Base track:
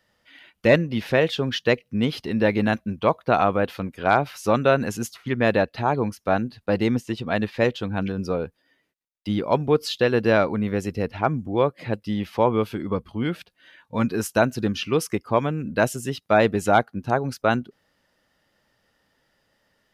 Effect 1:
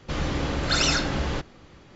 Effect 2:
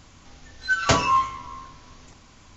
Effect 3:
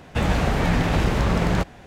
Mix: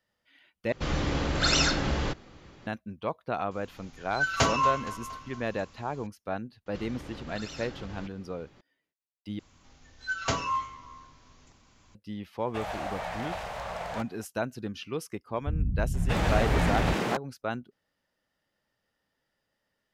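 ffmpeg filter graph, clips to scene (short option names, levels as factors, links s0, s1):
-filter_complex "[1:a]asplit=2[s0][s1];[2:a]asplit=2[s2][s3];[3:a]asplit=2[s4][s5];[0:a]volume=0.251[s6];[s2]aecho=1:1:233|466|699|932|1165:0.126|0.073|0.0424|0.0246|0.0142[s7];[s1]acompressor=threshold=0.0224:ratio=6:attack=3.2:release=140:knee=1:detection=peak[s8];[s4]lowshelf=f=460:t=q:w=3:g=-12[s9];[s5]acrossover=split=170[s10][s11];[s11]adelay=630[s12];[s10][s12]amix=inputs=2:normalize=0[s13];[s6]asplit=3[s14][s15][s16];[s14]atrim=end=0.724[s17];[s0]atrim=end=1.95,asetpts=PTS-STARTPTS,volume=0.841[s18];[s15]atrim=start=2.666:end=9.394[s19];[s3]atrim=end=2.56,asetpts=PTS-STARTPTS,volume=0.335[s20];[s16]atrim=start=11.946[s21];[s7]atrim=end=2.56,asetpts=PTS-STARTPTS,volume=0.562,afade=t=in:d=0.004:c=hsin,afade=t=out:st=2.556:d=0.004:c=hsin,adelay=3510[s22];[s8]atrim=end=1.95,asetpts=PTS-STARTPTS,volume=0.447,afade=t=in:d=0.004:c=hsin,afade=t=out:st=1.946:d=0.004:c=hsin,adelay=293706S[s23];[s9]atrim=end=1.86,asetpts=PTS-STARTPTS,volume=0.237,afade=t=in:d=0.004:c=hsin,afade=t=out:st=1.856:d=0.004:c=hsin,adelay=12390[s24];[s13]atrim=end=1.86,asetpts=PTS-STARTPTS,volume=0.631,afade=t=in:d=0.004:c=hsin,afade=t=out:st=1.856:d=0.004:c=hsin,adelay=15310[s25];[s17][s18]acrossfade=d=0.004:c1=hsin:c2=hsin[s26];[s26][s19]acrossfade=d=0.004:c1=hsin:c2=hsin[s27];[s27][s20]acrossfade=d=0.004:c1=hsin:c2=hsin[s28];[s28][s21]acrossfade=d=0.004:c1=hsin:c2=hsin[s29];[s29][s22][s23][s24][s25]amix=inputs=5:normalize=0"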